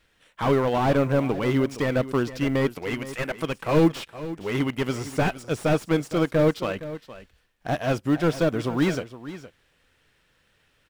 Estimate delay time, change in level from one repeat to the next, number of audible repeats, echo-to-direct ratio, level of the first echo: 0.465 s, no steady repeat, 1, -14.5 dB, -14.5 dB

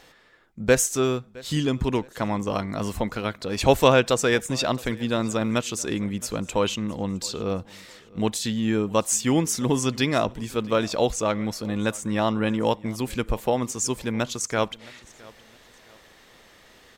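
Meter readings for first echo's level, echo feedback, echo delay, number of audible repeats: -23.0 dB, 34%, 0.665 s, 2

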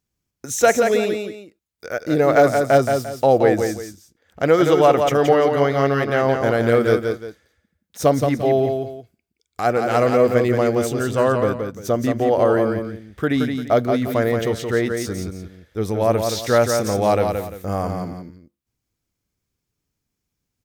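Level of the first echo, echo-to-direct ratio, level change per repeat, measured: -5.5 dB, -5.0 dB, -10.5 dB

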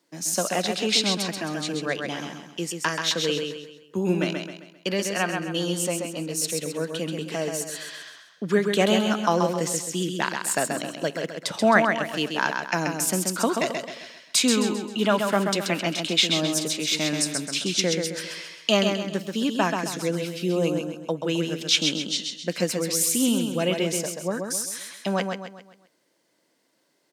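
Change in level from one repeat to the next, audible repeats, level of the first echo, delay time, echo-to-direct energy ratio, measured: -7.5 dB, 4, -5.0 dB, 0.132 s, -4.0 dB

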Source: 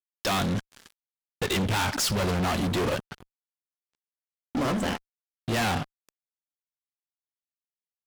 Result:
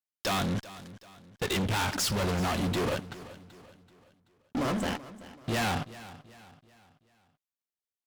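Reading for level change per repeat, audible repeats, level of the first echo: -7.5 dB, 3, -17.0 dB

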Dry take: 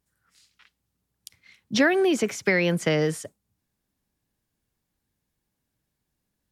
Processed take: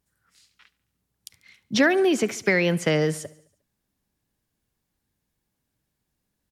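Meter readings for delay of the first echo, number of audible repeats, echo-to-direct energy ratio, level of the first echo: 71 ms, 3, -19.0 dB, -21.0 dB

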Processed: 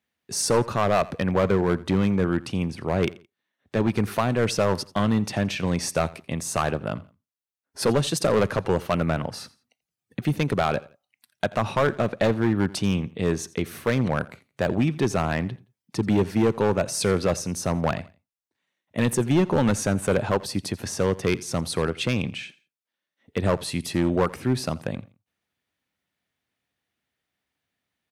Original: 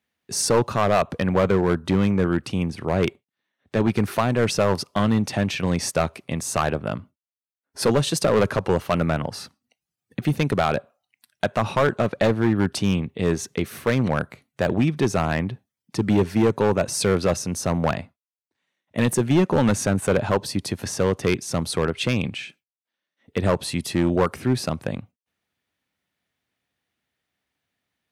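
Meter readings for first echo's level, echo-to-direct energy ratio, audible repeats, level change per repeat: -20.5 dB, -20.0 dB, 2, -10.5 dB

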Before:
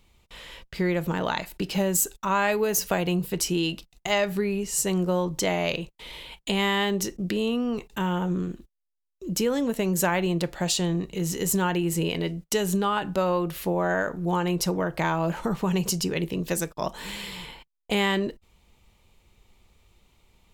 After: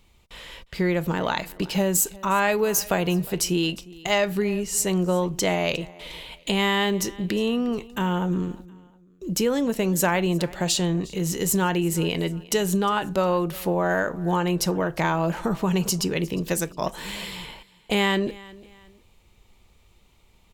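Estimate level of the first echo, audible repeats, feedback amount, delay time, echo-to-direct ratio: -21.5 dB, 2, 34%, 0.357 s, -21.0 dB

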